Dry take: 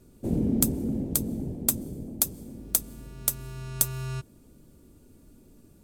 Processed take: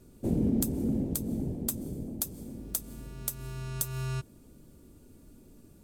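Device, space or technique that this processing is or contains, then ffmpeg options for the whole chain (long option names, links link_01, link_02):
clipper into limiter: -af "asoftclip=type=hard:threshold=-9.5dB,alimiter=limit=-17.5dB:level=0:latency=1:release=168"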